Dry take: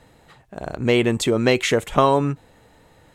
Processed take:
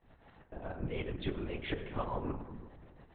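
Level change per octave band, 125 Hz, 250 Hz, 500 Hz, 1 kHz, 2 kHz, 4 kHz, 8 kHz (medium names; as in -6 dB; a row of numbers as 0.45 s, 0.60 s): -15.5 dB, -18.5 dB, -21.0 dB, -20.5 dB, -20.0 dB, -21.0 dB, under -40 dB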